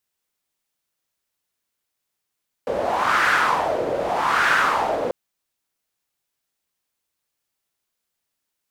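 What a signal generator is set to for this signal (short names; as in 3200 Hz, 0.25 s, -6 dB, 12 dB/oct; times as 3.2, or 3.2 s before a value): wind-like swept noise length 2.44 s, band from 520 Hz, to 1500 Hz, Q 3.6, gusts 2, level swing 7 dB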